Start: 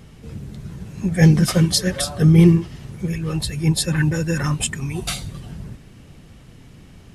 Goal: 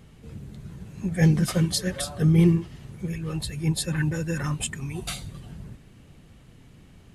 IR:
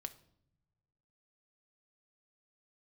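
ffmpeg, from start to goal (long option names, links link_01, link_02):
-af "equalizer=frequency=5400:width_type=o:width=0.24:gain=-4.5,volume=-6.5dB"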